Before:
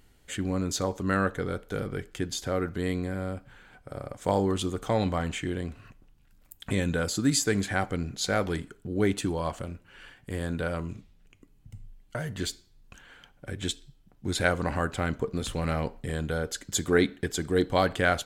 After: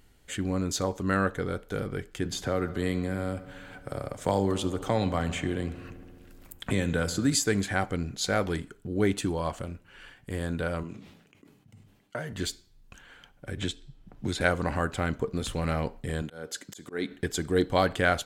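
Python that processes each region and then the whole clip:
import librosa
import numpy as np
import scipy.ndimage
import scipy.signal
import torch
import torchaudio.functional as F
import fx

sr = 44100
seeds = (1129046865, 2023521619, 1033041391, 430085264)

y = fx.chain(x, sr, fx.echo_filtered(ms=71, feedback_pct=75, hz=4400.0, wet_db=-17),
    fx.band_squash(depth_pct=40), at=(2.25, 7.35))
y = fx.chain(y, sr, fx.highpass(hz=190.0, slope=12),
    fx.high_shelf(hz=5100.0, db=-7.5),
    fx.sustainer(db_per_s=61.0), at=(10.83, 12.33))
y = fx.chain(y, sr, fx.lowpass(hz=4000.0, slope=6),
    fx.band_squash(depth_pct=70), at=(13.57, 14.41))
y = fx.chain(y, sr, fx.highpass(hz=160.0, slope=12),
    fx.auto_swell(attack_ms=298.0), at=(16.22, 17.11))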